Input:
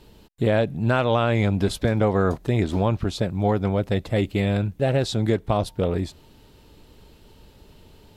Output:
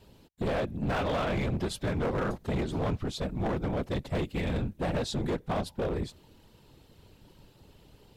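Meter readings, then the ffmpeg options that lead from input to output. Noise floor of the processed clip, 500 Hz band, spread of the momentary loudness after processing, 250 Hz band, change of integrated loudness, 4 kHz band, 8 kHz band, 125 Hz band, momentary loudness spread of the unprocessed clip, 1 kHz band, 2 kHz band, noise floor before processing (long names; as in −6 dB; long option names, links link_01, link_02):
−60 dBFS, −9.0 dB, 4 LU, −8.5 dB, −9.0 dB, −6.5 dB, −5.5 dB, −10.0 dB, 5 LU, −7.5 dB, −7.5 dB, −52 dBFS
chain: -af "afftfilt=real='hypot(re,im)*cos(2*PI*random(0))':imag='hypot(re,im)*sin(2*PI*random(1))':win_size=512:overlap=0.75,asoftclip=type=hard:threshold=-26dB"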